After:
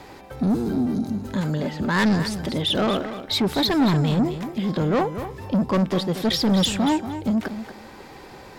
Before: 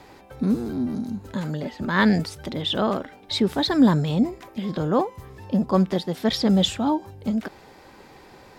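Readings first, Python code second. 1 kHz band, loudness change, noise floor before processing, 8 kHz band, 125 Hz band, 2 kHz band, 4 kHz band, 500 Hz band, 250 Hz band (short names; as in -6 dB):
+1.0 dB, +1.0 dB, -49 dBFS, +4.5 dB, +2.0 dB, +1.0 dB, +2.5 dB, +0.5 dB, +0.5 dB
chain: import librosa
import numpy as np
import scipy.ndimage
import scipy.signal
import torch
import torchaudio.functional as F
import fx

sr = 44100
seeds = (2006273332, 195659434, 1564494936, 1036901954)

y = 10.0 ** (-21.0 / 20.0) * np.tanh(x / 10.0 ** (-21.0 / 20.0))
y = fx.echo_feedback(y, sr, ms=234, feedback_pct=16, wet_db=-11)
y = F.gain(torch.from_numpy(y), 5.0).numpy()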